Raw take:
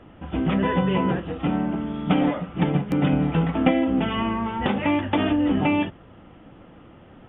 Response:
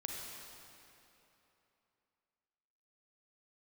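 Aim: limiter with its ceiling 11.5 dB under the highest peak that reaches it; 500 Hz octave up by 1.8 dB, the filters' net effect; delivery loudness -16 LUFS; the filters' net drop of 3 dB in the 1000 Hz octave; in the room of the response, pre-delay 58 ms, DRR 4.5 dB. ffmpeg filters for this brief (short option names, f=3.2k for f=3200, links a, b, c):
-filter_complex "[0:a]equalizer=f=500:t=o:g=3.5,equalizer=f=1k:t=o:g=-5,alimiter=limit=-16.5dB:level=0:latency=1,asplit=2[a][b];[1:a]atrim=start_sample=2205,adelay=58[c];[b][c]afir=irnorm=-1:irlink=0,volume=-4.5dB[d];[a][d]amix=inputs=2:normalize=0,volume=8dB"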